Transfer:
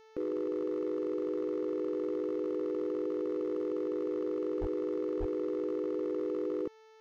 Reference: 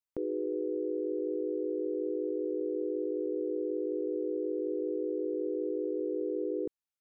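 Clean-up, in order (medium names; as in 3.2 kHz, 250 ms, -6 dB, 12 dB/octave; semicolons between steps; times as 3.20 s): clip repair -28 dBFS; de-hum 439.7 Hz, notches 15; 4.60–4.72 s: high-pass 140 Hz 24 dB/octave; 5.19–5.31 s: high-pass 140 Hz 24 dB/octave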